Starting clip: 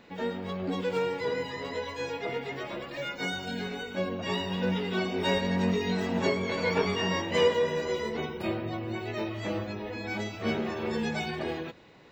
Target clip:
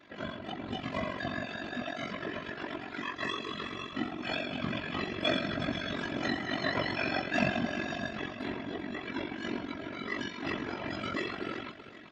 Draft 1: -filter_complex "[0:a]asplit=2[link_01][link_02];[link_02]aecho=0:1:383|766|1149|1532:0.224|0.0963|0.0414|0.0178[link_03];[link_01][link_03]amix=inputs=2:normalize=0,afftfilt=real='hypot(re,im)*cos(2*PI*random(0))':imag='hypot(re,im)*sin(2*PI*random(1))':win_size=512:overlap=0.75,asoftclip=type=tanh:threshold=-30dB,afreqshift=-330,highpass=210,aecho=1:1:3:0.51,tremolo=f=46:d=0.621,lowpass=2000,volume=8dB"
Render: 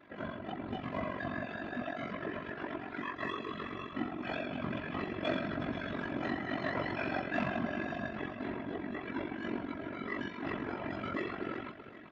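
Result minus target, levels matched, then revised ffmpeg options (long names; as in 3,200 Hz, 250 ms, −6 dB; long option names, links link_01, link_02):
soft clipping: distortion +16 dB; 4,000 Hz band −7.5 dB
-filter_complex "[0:a]asplit=2[link_01][link_02];[link_02]aecho=0:1:383|766|1149|1532:0.224|0.0963|0.0414|0.0178[link_03];[link_01][link_03]amix=inputs=2:normalize=0,afftfilt=real='hypot(re,im)*cos(2*PI*random(0))':imag='hypot(re,im)*sin(2*PI*random(1))':win_size=512:overlap=0.75,asoftclip=type=tanh:threshold=-18dB,afreqshift=-330,highpass=210,aecho=1:1:3:0.51,tremolo=f=46:d=0.621,lowpass=5000,volume=8dB"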